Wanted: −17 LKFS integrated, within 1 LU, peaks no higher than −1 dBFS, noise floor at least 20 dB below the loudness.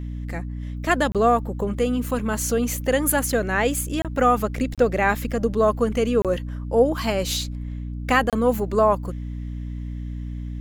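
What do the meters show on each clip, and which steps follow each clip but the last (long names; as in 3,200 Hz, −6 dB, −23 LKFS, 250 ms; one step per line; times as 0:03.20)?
number of dropouts 5; longest dropout 27 ms; mains hum 60 Hz; hum harmonics up to 300 Hz; level of the hum −28 dBFS; integrated loudness −22.5 LKFS; sample peak −5.0 dBFS; target loudness −17.0 LKFS
→ repair the gap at 0:01.12/0:04.02/0:04.75/0:06.22/0:08.30, 27 ms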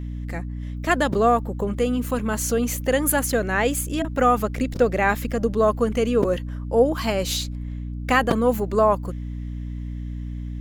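number of dropouts 0; mains hum 60 Hz; hum harmonics up to 300 Hz; level of the hum −28 dBFS
→ mains-hum notches 60/120/180/240/300 Hz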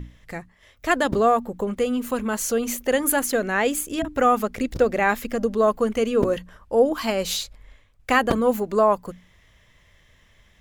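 mains hum none found; integrated loudness −22.5 LKFS; sample peak −5.5 dBFS; target loudness −17.0 LKFS
→ level +5.5 dB
brickwall limiter −1 dBFS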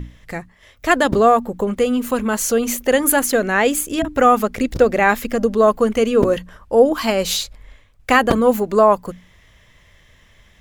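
integrated loudness −17.0 LKFS; sample peak −1.0 dBFS; background noise floor −53 dBFS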